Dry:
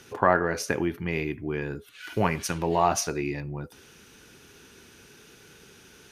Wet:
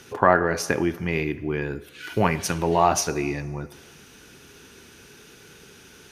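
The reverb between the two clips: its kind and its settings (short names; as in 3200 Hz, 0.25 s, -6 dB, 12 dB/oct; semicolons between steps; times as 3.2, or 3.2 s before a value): plate-style reverb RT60 1.8 s, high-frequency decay 0.85×, pre-delay 0 ms, DRR 16.5 dB; gain +3.5 dB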